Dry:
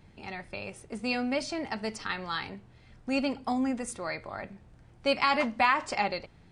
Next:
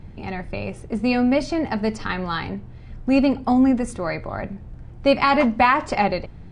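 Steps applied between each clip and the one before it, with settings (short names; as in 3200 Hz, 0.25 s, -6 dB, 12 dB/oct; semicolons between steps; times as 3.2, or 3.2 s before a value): tilt -2.5 dB/oct; gain +8 dB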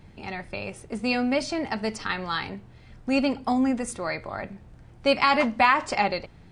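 tilt +2 dB/oct; gain -3 dB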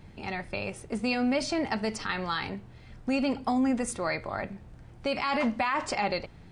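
limiter -18.5 dBFS, peak gain reduction 11.5 dB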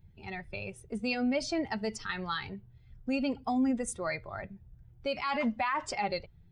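per-bin expansion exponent 1.5; gain -1 dB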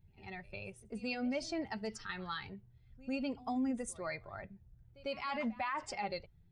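reverse echo 99 ms -21 dB; gain -6.5 dB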